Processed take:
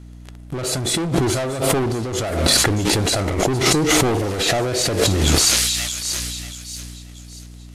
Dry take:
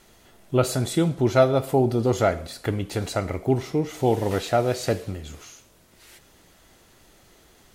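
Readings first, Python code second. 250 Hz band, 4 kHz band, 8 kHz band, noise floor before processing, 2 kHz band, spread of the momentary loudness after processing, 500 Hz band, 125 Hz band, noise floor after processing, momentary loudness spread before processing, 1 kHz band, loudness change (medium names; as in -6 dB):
+4.0 dB, +17.5 dB, +18.5 dB, -56 dBFS, +11.0 dB, 16 LU, +1.0 dB, +4.0 dB, -39 dBFS, 9 LU, +3.0 dB, +5.5 dB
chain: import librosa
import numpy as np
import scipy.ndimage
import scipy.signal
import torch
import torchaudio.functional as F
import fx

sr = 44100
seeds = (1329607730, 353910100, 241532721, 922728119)

y = fx.peak_eq(x, sr, hz=330.0, db=4.5, octaves=0.31)
y = fx.leveller(y, sr, passes=5)
y = fx.echo_wet_highpass(y, sr, ms=634, feedback_pct=38, hz=4300.0, wet_db=-5.0)
y = fx.add_hum(y, sr, base_hz=60, snr_db=33)
y = fx.over_compress(y, sr, threshold_db=-21.0, ratio=-1.0)
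y = scipy.signal.sosfilt(scipy.signal.butter(4, 12000.0, 'lowpass', fs=sr, output='sos'), y)
y = fx.sustainer(y, sr, db_per_s=25.0)
y = y * 10.0 ** (-1.0 / 20.0)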